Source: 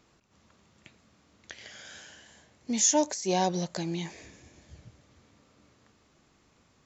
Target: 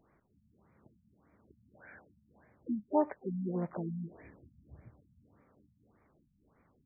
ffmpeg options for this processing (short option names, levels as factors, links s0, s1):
-filter_complex "[0:a]asplit=3[s0][s1][s2];[s1]asetrate=58866,aresample=44100,atempo=0.749154,volume=0.251[s3];[s2]asetrate=88200,aresample=44100,atempo=0.5,volume=0.2[s4];[s0][s3][s4]amix=inputs=3:normalize=0,afftfilt=real='re*lt(b*sr/1024,230*pow(2500/230,0.5+0.5*sin(2*PI*1.7*pts/sr)))':imag='im*lt(b*sr/1024,230*pow(2500/230,0.5+0.5*sin(2*PI*1.7*pts/sr)))':win_size=1024:overlap=0.75,volume=0.668"